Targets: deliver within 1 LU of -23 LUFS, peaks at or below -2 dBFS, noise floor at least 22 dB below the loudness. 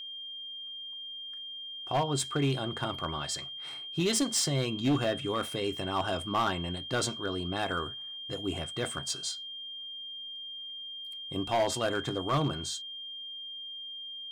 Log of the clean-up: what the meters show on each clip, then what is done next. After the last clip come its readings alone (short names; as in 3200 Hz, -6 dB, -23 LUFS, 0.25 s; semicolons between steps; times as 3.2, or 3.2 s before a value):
clipped 0.9%; flat tops at -22.0 dBFS; steady tone 3200 Hz; tone level -39 dBFS; loudness -32.5 LUFS; peak -22.0 dBFS; loudness target -23.0 LUFS
-> clip repair -22 dBFS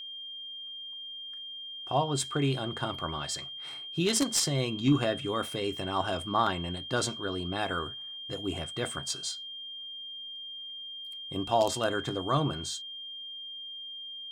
clipped 0.0%; steady tone 3200 Hz; tone level -39 dBFS
-> notch 3200 Hz, Q 30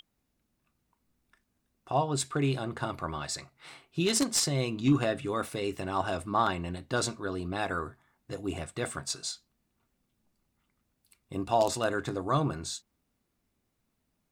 steady tone none; loudness -31.0 LUFS; peak -12.5 dBFS; loudness target -23.0 LUFS
-> gain +8 dB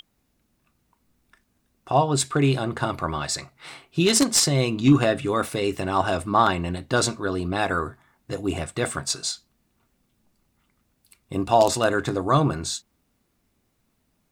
loudness -23.0 LUFS; peak -4.5 dBFS; noise floor -71 dBFS